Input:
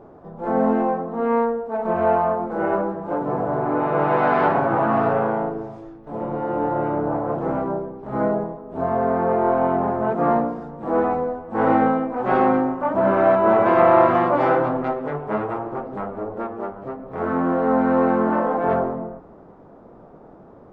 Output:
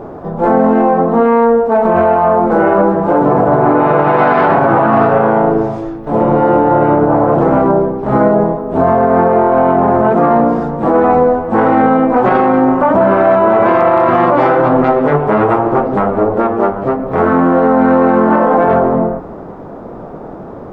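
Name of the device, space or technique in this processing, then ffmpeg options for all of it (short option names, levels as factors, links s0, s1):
loud club master: -af "acompressor=threshold=0.0708:ratio=1.5,asoftclip=type=hard:threshold=0.376,alimiter=level_in=7.94:limit=0.891:release=50:level=0:latency=1,volume=0.891"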